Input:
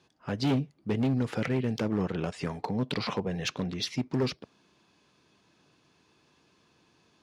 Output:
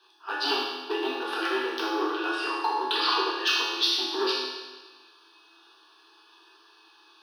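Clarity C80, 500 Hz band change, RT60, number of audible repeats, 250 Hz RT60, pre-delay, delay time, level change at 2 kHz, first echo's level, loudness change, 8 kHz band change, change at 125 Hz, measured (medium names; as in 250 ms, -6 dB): 2.0 dB, +2.5 dB, 1.3 s, no echo, 1.3 s, 4 ms, no echo, +10.5 dB, no echo, +4.0 dB, +4.0 dB, under -40 dB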